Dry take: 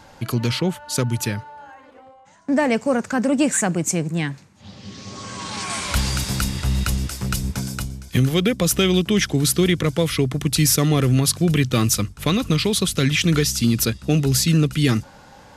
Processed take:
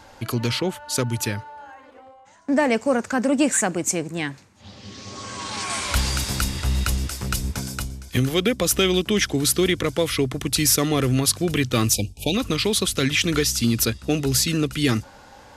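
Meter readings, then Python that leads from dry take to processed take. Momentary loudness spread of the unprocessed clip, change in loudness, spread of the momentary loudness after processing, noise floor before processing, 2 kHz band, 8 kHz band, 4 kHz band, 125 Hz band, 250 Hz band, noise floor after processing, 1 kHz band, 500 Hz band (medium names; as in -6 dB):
10 LU, -2.0 dB, 10 LU, -47 dBFS, 0.0 dB, 0.0 dB, 0.0 dB, -5.5 dB, -3.0 dB, -48 dBFS, -0.5 dB, -0.5 dB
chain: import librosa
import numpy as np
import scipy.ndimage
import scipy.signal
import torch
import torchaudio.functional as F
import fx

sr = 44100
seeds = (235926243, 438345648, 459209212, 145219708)

y = fx.spec_erase(x, sr, start_s=11.93, length_s=0.42, low_hz=900.0, high_hz=2300.0)
y = fx.peak_eq(y, sr, hz=160.0, db=-10.0, octaves=0.57)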